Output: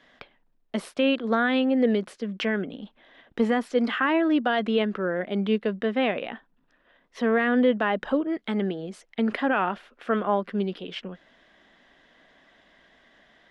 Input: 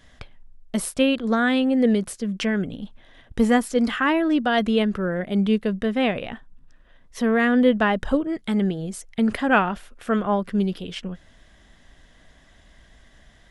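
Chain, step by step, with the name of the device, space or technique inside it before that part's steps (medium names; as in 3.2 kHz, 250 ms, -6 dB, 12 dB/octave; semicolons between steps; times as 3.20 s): DJ mixer with the lows and highs turned down (three-band isolator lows -23 dB, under 210 Hz, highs -20 dB, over 4.4 kHz; peak limiter -12.5 dBFS, peak gain reduction 8.5 dB)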